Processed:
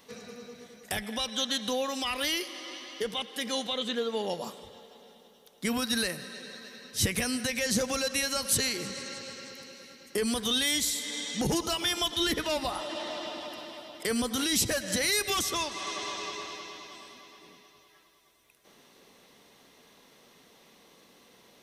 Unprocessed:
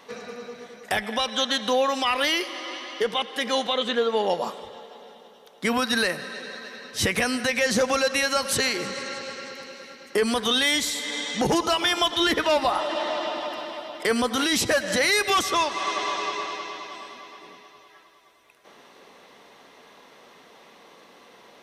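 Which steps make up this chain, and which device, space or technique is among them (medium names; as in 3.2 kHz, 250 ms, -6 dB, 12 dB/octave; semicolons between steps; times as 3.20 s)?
smiley-face EQ (bass shelf 170 Hz +5 dB; peaking EQ 990 Hz -8.5 dB 3 oct; treble shelf 8 kHz +8 dB); trim -3 dB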